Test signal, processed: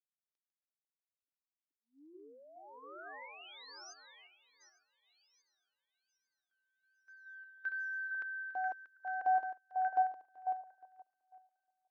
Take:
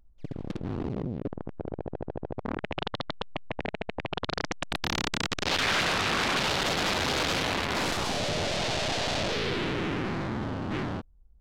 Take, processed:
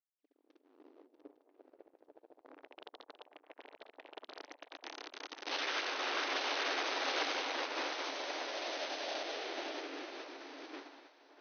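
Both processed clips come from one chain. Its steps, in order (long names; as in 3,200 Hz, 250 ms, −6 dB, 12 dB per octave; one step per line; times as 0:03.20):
feedback delay that plays each chunk backwards 427 ms, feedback 56%, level −5 dB
linear-phase brick-wall band-pass 260–6,400 Hz
echo through a band-pass that steps 495 ms, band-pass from 710 Hz, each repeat 1.4 octaves, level −1.5 dB
expander for the loud parts 2.5 to 1, over −40 dBFS
level −8 dB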